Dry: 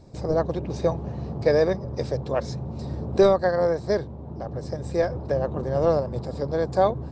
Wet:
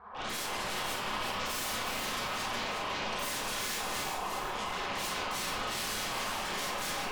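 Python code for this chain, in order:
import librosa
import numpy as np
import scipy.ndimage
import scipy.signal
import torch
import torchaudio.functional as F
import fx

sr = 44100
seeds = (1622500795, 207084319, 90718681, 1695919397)

y = fx.spec_gate(x, sr, threshold_db=-25, keep='weak')
y = scipy.signal.sosfilt(scipy.signal.butter(4, 1200.0, 'lowpass', fs=sr, output='sos'), y)
y = fx.rider(y, sr, range_db=4, speed_s=2.0)
y = fx.fold_sine(y, sr, drive_db=19, ceiling_db=-38.5)
y = fx.echo_feedback(y, sr, ms=362, feedback_pct=37, wet_db=-5.0)
y = fx.rev_schroeder(y, sr, rt60_s=0.5, comb_ms=30, drr_db=-8.0)
y = F.gain(torch.from_numpy(y), -3.5).numpy()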